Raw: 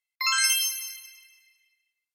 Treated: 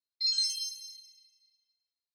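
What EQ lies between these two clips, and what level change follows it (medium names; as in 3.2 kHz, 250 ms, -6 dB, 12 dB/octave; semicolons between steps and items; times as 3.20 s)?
ladder band-pass 4.2 kHz, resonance 70%; resonant high shelf 3.5 kHz +6.5 dB, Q 3; -7.5 dB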